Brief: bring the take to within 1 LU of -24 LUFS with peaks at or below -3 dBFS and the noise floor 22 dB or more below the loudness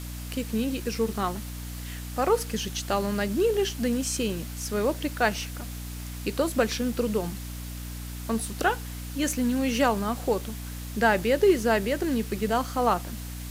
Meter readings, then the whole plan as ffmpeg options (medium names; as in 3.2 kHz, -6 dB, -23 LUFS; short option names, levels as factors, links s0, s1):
hum 60 Hz; highest harmonic 300 Hz; hum level -35 dBFS; noise floor -37 dBFS; noise floor target -50 dBFS; loudness -27.5 LUFS; peak level -8.5 dBFS; loudness target -24.0 LUFS
-> -af "bandreject=f=60:t=h:w=6,bandreject=f=120:t=h:w=6,bandreject=f=180:t=h:w=6,bandreject=f=240:t=h:w=6,bandreject=f=300:t=h:w=6"
-af "afftdn=nr=13:nf=-37"
-af "volume=1.5"